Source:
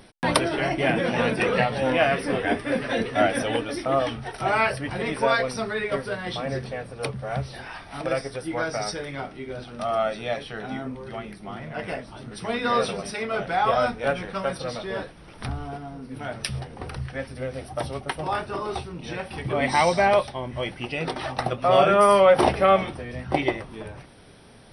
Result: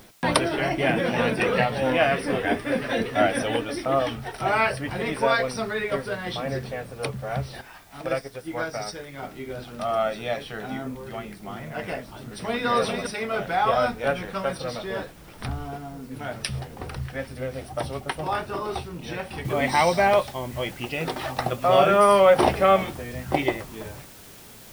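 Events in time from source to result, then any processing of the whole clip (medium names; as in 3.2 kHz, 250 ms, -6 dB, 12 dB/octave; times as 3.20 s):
7.61–9.23 s: upward expansion, over -41 dBFS
11.99–12.66 s: echo throw 400 ms, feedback 15%, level -4.5 dB
19.45 s: noise floor step -57 dB -48 dB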